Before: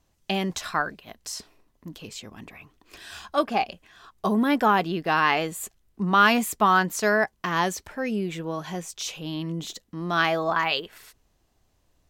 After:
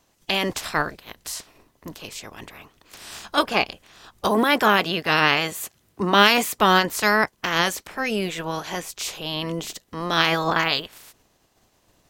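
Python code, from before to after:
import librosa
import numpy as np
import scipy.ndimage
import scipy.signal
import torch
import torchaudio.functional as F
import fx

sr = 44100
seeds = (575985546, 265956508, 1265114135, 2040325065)

y = fx.spec_clip(x, sr, under_db=17)
y = fx.highpass(y, sr, hz=77.0, slope=12, at=(4.28, 6.59))
y = y * librosa.db_to_amplitude(3.0)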